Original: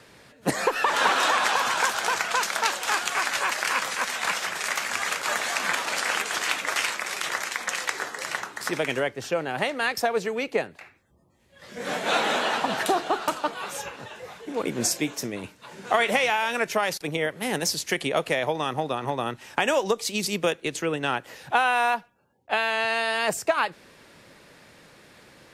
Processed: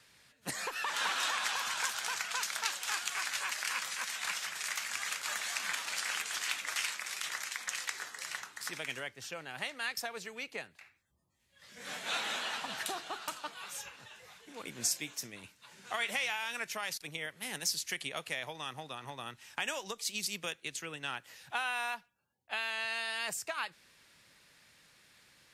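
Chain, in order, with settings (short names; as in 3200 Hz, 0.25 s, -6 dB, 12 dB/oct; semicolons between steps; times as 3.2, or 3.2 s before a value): passive tone stack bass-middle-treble 5-5-5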